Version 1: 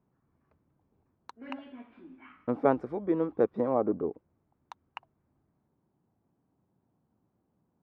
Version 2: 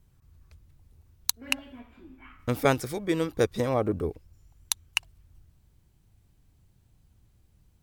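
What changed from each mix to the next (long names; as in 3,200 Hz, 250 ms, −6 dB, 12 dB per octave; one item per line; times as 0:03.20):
speech: remove Chebyshev band-pass filter 220–1,000 Hz, order 2
background: remove high-frequency loss of the air 270 metres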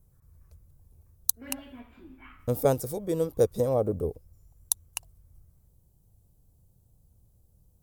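speech: add drawn EQ curve 160 Hz 0 dB, 330 Hz −5 dB, 500 Hz +4 dB, 2,100 Hz −18 dB, 12,000 Hz +6 dB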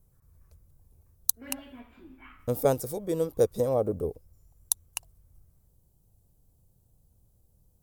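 master: add parametric band 82 Hz −3.5 dB 2.4 octaves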